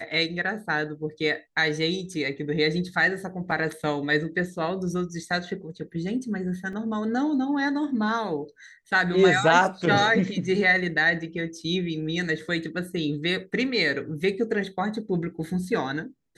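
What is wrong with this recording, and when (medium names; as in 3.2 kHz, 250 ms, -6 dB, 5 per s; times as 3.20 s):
3.51 s: dropout 3.8 ms
6.73 s: dropout 2.3 ms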